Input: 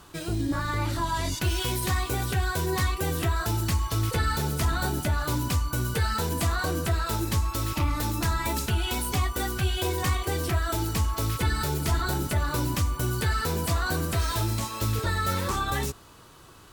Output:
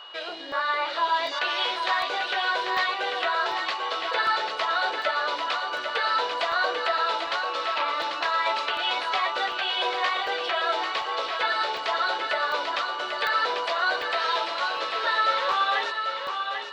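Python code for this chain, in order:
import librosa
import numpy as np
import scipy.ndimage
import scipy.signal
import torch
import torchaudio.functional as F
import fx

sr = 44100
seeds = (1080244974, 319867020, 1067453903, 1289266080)

p1 = scipy.signal.sosfilt(scipy.signal.cheby1(3, 1.0, [550.0, 4000.0], 'bandpass', fs=sr, output='sos'), x)
p2 = p1 + 10.0 ** (-49.0 / 20.0) * np.sin(2.0 * np.pi * 2900.0 * np.arange(len(p1)) / sr)
p3 = p2 + fx.echo_feedback(p2, sr, ms=792, feedback_pct=32, wet_db=-6, dry=0)
p4 = fx.buffer_crackle(p3, sr, first_s=0.52, period_s=0.75, block=64, kind='zero')
y = p4 * 10.0 ** (6.5 / 20.0)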